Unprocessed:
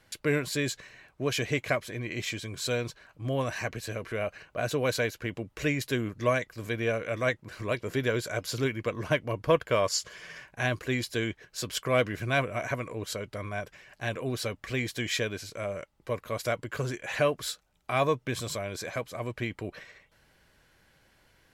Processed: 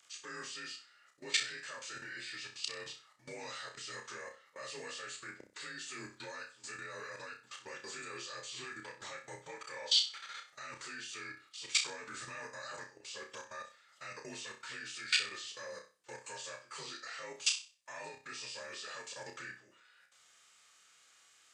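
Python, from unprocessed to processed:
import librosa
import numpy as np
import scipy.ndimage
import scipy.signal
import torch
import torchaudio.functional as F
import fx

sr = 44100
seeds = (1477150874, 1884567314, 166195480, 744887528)

p1 = fx.partial_stretch(x, sr, pct=87)
p2 = np.diff(p1, prepend=0.0)
p3 = fx.level_steps(p2, sr, step_db=20)
p4 = p3 + fx.room_flutter(p3, sr, wall_m=5.4, rt60_s=0.34, dry=0)
y = F.gain(torch.from_numpy(p4), 13.5).numpy()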